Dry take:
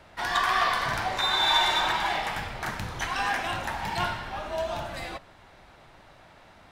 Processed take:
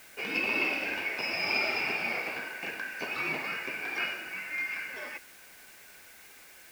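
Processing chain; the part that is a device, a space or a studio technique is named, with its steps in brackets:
split-band scrambled radio (band-splitting scrambler in four parts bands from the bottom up 2143; band-pass filter 300–3,100 Hz; white noise bed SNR 20 dB)
level −3 dB

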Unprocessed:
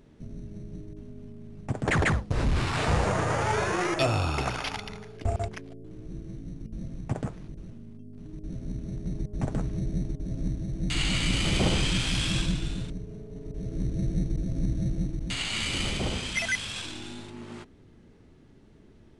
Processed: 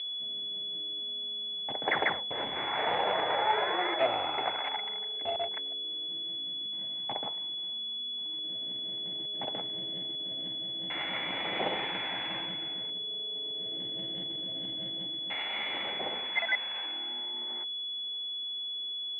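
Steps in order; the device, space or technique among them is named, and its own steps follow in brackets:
0:06.69–0:08.39: graphic EQ with 10 bands 500 Hz −3 dB, 1,000 Hz +7 dB, 2,000 Hz −11 dB, 4,000 Hz +12 dB, 8,000 Hz +7 dB
toy sound module (linearly interpolated sample-rate reduction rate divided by 4×; switching amplifier with a slow clock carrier 3,400 Hz; loudspeaker in its box 590–3,500 Hz, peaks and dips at 830 Hz +4 dB, 1,200 Hz −7 dB, 2,100 Hz +10 dB, 3,100 Hz +3 dB)
level +1.5 dB

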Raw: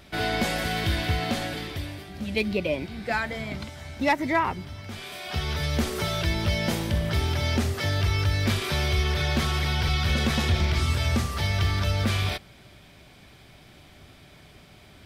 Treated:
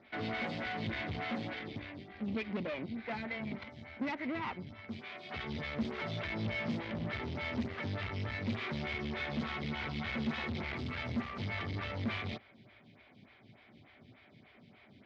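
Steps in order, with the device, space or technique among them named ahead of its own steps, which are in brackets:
vibe pedal into a guitar amplifier (phaser with staggered stages 3.4 Hz; tube saturation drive 34 dB, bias 0.8; loudspeaker in its box 93–4,100 Hz, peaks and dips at 110 Hz +7 dB, 230 Hz +9 dB, 2,100 Hz +7 dB)
level −2 dB

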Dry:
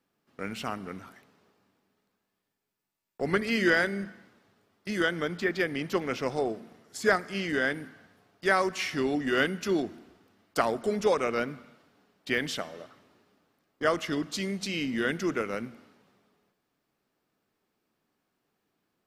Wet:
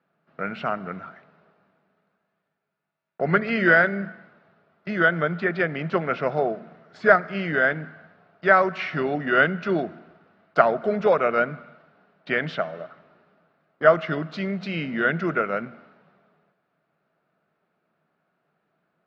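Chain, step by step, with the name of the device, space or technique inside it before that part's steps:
guitar cabinet (loudspeaker in its box 100–3,500 Hz, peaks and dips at 110 Hz −4 dB, 160 Hz +10 dB, 280 Hz −5 dB, 640 Hz +10 dB, 1,400 Hz +9 dB, 3,200 Hz −5 dB)
level +3 dB

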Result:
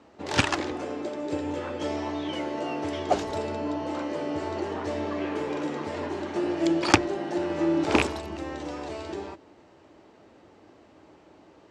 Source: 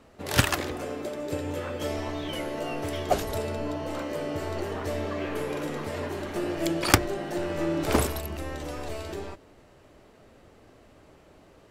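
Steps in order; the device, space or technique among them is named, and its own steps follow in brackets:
car door speaker with a rattle (loose part that buzzes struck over −23 dBFS, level −7 dBFS; loudspeaker in its box 93–7,100 Hz, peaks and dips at 130 Hz −5 dB, 320 Hz +7 dB, 880 Hz +6 dB)
level −1 dB

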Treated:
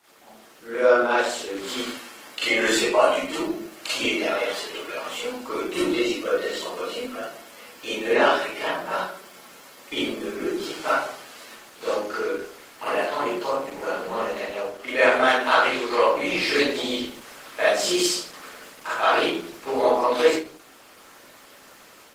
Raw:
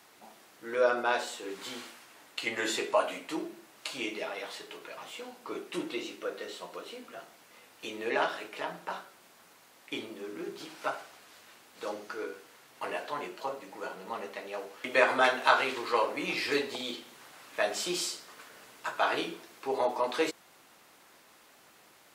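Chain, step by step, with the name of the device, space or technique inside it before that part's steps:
far-field microphone of a smart speaker (convolution reverb RT60 0.45 s, pre-delay 35 ms, DRR −8.5 dB; high-pass filter 120 Hz 6 dB per octave; automatic gain control gain up to 6 dB; level −3 dB; Opus 16 kbit/s 48,000 Hz)

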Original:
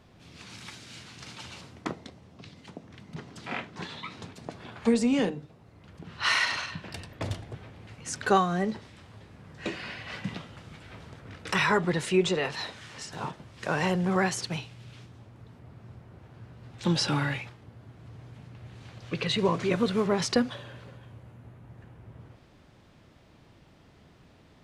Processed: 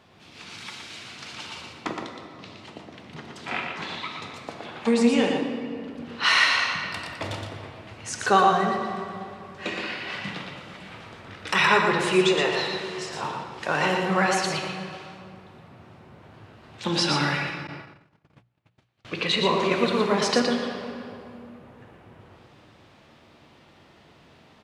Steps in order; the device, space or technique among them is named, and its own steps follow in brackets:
PA in a hall (high-pass filter 140 Hz 6 dB per octave; parametric band 3,100 Hz +5 dB 1.6 octaves; single-tap delay 118 ms −5 dB; convolution reverb RT60 2.7 s, pre-delay 10 ms, DRR 4.5 dB)
0:17.67–0:19.05: noise gate −40 dBFS, range −33 dB
parametric band 950 Hz +4 dB 1.6 octaves
mains-hum notches 60/120/180 Hz

